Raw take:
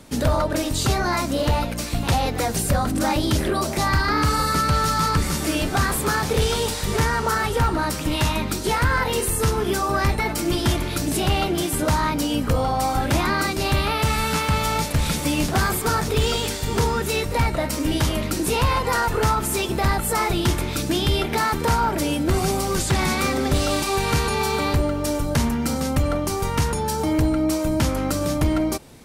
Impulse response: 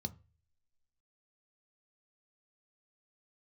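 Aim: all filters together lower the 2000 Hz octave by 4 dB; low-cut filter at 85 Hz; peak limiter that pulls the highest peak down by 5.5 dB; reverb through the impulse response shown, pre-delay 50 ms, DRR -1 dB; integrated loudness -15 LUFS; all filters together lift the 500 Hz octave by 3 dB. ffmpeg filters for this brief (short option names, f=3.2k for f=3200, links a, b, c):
-filter_complex "[0:a]highpass=85,equalizer=f=500:t=o:g=4,equalizer=f=2k:t=o:g=-5.5,alimiter=limit=-13dB:level=0:latency=1,asplit=2[a][b];[1:a]atrim=start_sample=2205,adelay=50[c];[b][c]afir=irnorm=-1:irlink=0,volume=3dB[d];[a][d]amix=inputs=2:normalize=0,volume=-0.5dB"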